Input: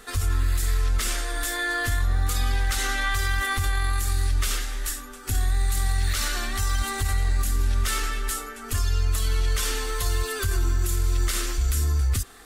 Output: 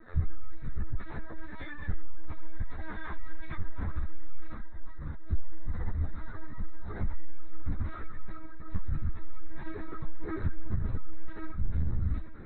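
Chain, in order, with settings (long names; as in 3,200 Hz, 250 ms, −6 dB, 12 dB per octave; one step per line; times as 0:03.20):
phase distortion by the signal itself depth 0.33 ms
Butterworth band-reject 3,000 Hz, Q 1.4
soft clipping −19.5 dBFS, distortion −17 dB
delay with a band-pass on its return 87 ms, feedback 32%, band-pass 1,200 Hz, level −6 dB
reverb reduction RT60 1.3 s
low-shelf EQ 360 Hz +11.5 dB
feedback delay with all-pass diffusion 928 ms, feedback 67%, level −11 dB
amplitude modulation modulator 86 Hz, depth 40%
0:04.52–0:06.96: parametric band 2,600 Hz −8.5 dB 0.57 octaves
linear-prediction vocoder at 8 kHz pitch kept
string-ensemble chorus
level −6 dB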